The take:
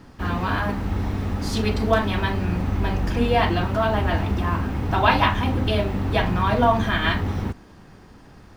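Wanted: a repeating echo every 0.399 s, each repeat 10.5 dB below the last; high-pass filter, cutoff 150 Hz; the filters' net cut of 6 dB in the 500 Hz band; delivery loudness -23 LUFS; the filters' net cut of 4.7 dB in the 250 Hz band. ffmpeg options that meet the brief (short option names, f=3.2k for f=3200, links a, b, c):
-af "highpass=150,equalizer=f=250:t=o:g=-3,equalizer=f=500:t=o:g=-8,aecho=1:1:399|798|1197:0.299|0.0896|0.0269,volume=3dB"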